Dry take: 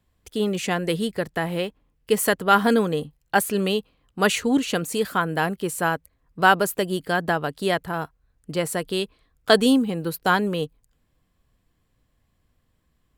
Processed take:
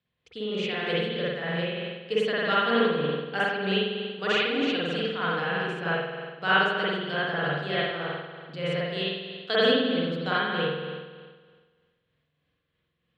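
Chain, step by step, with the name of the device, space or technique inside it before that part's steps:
first-order pre-emphasis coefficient 0.9
combo amplifier with spring reverb and tremolo (spring reverb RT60 1.6 s, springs 47 ms, chirp 40 ms, DRR −9 dB; amplitude tremolo 3.2 Hz, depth 35%; loudspeaker in its box 91–3,800 Hz, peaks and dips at 150 Hz +9 dB, 480 Hz +8 dB, 890 Hz −5 dB)
level +3 dB

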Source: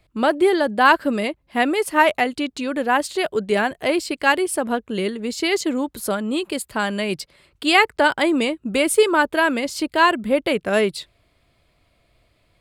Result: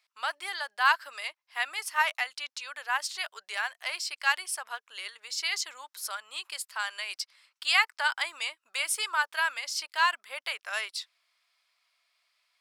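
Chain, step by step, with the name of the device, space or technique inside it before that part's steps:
headphones lying on a table (high-pass filter 1,000 Hz 24 dB per octave; parametric band 5,500 Hz +10 dB 0.44 octaves)
level −7 dB

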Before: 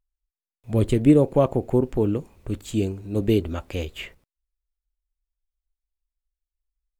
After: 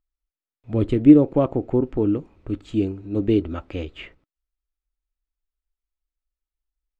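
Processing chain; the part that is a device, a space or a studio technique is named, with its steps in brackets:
inside a cardboard box (low-pass filter 3,500 Hz 12 dB per octave; hollow resonant body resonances 300/1,300 Hz, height 8 dB)
level −2 dB

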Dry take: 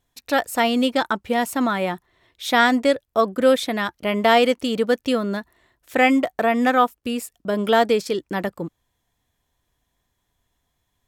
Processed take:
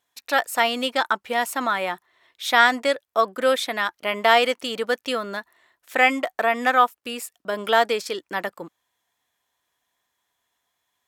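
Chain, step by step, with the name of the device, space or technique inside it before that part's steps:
filter by subtraction (in parallel: low-pass filter 1,200 Hz 12 dB per octave + polarity inversion)

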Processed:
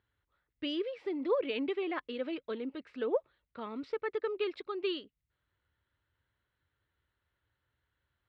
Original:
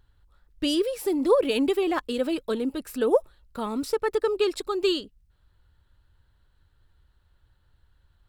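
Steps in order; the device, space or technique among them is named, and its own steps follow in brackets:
guitar cabinet (loudspeaker in its box 100–3,600 Hz, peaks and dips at 180 Hz −5 dB, 830 Hz −4 dB, 2,100 Hz +7 dB)
low-shelf EQ 200 Hz −4.5 dB
level −9 dB

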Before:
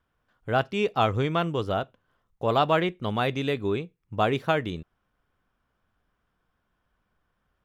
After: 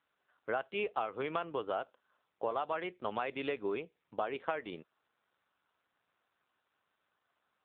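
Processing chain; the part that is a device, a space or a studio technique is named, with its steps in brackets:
0:02.72–0:03.77: noise gate −39 dBFS, range −36 dB
voicemail (band-pass filter 440–3,200 Hz; downward compressor 12 to 1, threshold −30 dBFS, peak gain reduction 13.5 dB; AMR narrowband 7.4 kbit/s 8,000 Hz)

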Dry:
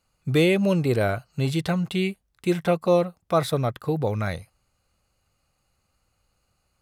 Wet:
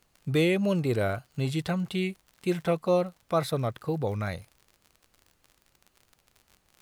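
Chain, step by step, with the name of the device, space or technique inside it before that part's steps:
vinyl LP (tape wow and flutter; surface crackle 50 per second −36 dBFS; pink noise bed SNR 41 dB)
level −4.5 dB

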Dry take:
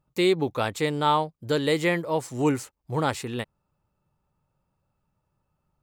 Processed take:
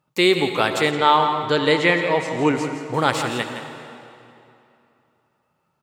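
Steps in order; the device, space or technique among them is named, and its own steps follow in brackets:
PA in a hall (high-pass filter 140 Hz 12 dB per octave; parametric band 2,400 Hz +6.5 dB 2.9 octaves; single-tap delay 167 ms −10 dB; convolution reverb RT60 2.8 s, pre-delay 66 ms, DRR 7.5 dB)
0:00.91–0:02.94: high-frequency loss of the air 70 metres
level +3 dB

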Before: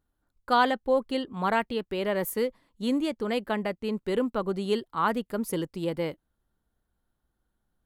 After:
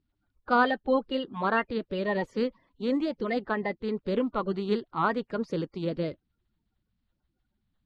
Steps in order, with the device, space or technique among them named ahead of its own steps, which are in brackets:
clip after many re-uploads (low-pass filter 4,700 Hz 24 dB per octave; spectral magnitudes quantised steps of 30 dB)

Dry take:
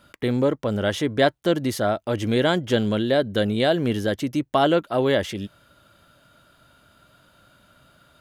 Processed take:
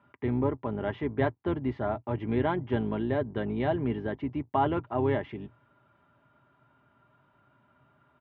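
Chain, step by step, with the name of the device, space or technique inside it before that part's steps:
comb filter 5 ms, depth 46%
sub-octave bass pedal (sub-octave generator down 2 octaves, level −3 dB; loudspeaker in its box 86–2,200 Hz, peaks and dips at 120 Hz +7 dB, 190 Hz −9 dB, 280 Hz +5 dB, 550 Hz −7 dB, 920 Hz +8 dB, 1,500 Hz −6 dB)
level −7.5 dB

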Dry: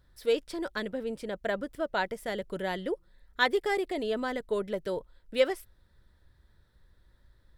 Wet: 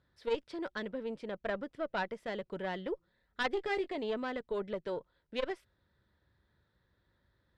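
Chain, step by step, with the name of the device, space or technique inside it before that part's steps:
valve radio (band-pass filter 98–4,100 Hz; tube saturation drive 17 dB, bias 0.75; saturating transformer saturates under 370 Hz)
0:03.52–0:03.95: double-tracking delay 18 ms −8.5 dB

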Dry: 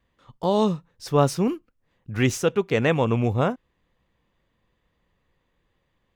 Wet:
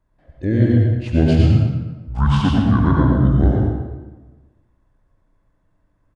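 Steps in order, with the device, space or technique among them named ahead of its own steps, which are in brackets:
monster voice (pitch shifter −10 semitones; formants moved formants −2 semitones; low-shelf EQ 240 Hz +6 dB; single-tap delay 111 ms −8.5 dB; convolution reverb RT60 1.2 s, pre-delay 72 ms, DRR −2 dB)
level −1 dB

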